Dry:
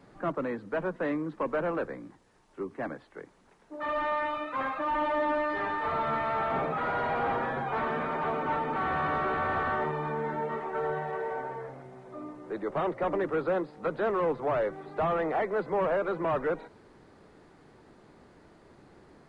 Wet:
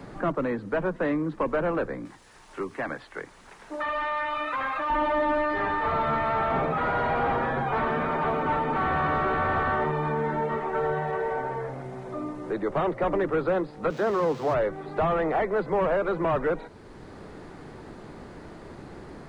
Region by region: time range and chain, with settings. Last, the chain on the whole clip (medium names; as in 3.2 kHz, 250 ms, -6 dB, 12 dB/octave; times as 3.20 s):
2.05–4.90 s: tilt shelf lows -7 dB, about 730 Hz + compression, threshold -31 dBFS
13.90–14.54 s: zero-crossing glitches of -28.5 dBFS + high-pass 110 Hz + distance through air 170 m
whole clip: bass shelf 100 Hz +9.5 dB; three bands compressed up and down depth 40%; trim +3.5 dB